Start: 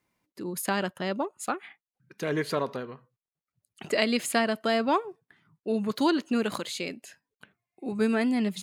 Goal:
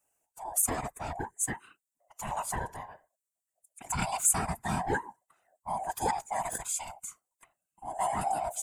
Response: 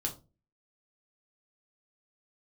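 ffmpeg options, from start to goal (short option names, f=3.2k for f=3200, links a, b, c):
-af "afftfilt=real='real(if(lt(b,1008),b+24*(1-2*mod(floor(b/24),2)),b),0)':imag='imag(if(lt(b,1008),b+24*(1-2*mod(floor(b/24),2)),b),0)':win_size=2048:overlap=0.75,highshelf=f=5.8k:t=q:w=3:g=11,afftfilt=real='hypot(re,im)*cos(2*PI*random(0))':imag='hypot(re,im)*sin(2*PI*random(1))':win_size=512:overlap=0.75,adynamicequalizer=threshold=0.00282:dfrequency=2900:dqfactor=1.6:tfrequency=2900:tqfactor=1.6:attack=5:release=100:ratio=0.375:range=2.5:mode=cutabove:tftype=bell"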